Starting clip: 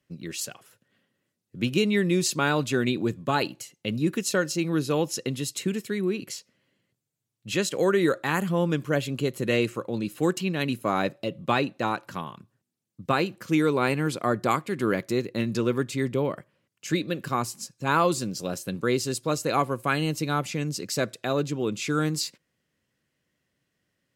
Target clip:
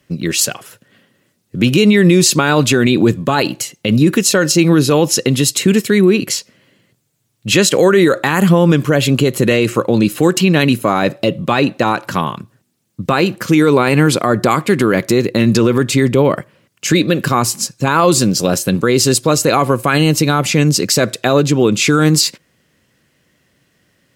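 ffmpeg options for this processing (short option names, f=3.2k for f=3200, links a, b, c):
-af "alimiter=level_in=19dB:limit=-1dB:release=50:level=0:latency=1,volume=-1dB"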